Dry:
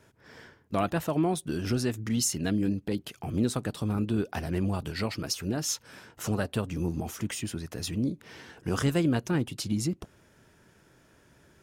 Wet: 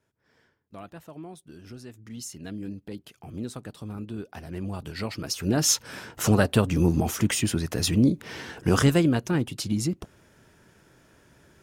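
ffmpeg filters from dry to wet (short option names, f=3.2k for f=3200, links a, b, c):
-af "volume=9dB,afade=t=in:st=1.84:d=0.94:silence=0.421697,afade=t=in:st=4.42:d=0.92:silence=0.375837,afade=t=in:st=5.34:d=0.3:silence=0.398107,afade=t=out:st=8.63:d=0.51:silence=0.473151"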